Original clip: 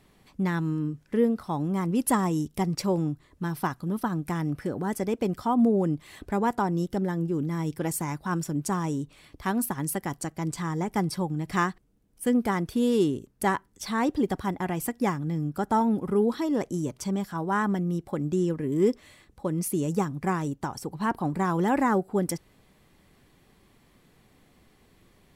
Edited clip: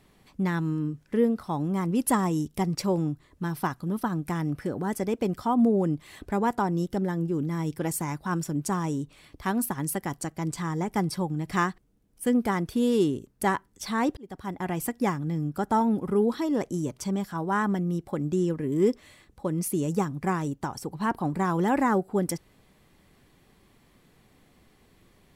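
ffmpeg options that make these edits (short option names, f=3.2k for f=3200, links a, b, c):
-filter_complex "[0:a]asplit=2[a][b];[a]atrim=end=14.17,asetpts=PTS-STARTPTS,afade=t=out:st=14.166:d=0.004:c=hsin[c];[b]atrim=start=14.17,asetpts=PTS-STARTPTS,afade=t=in:d=0.56[d];[c][d]concat=n=2:v=0:a=1"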